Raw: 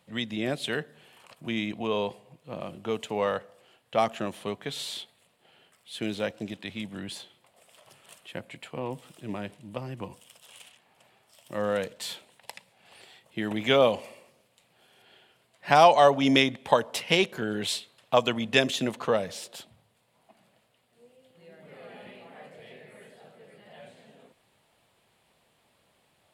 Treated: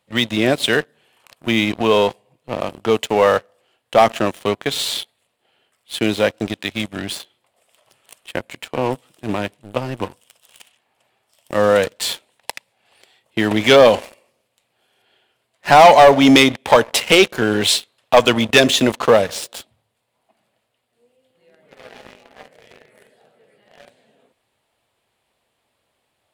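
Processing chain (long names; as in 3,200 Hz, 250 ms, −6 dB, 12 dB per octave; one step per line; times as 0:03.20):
parametric band 170 Hz −8.5 dB 0.49 octaves
leveller curve on the samples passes 3
level +3 dB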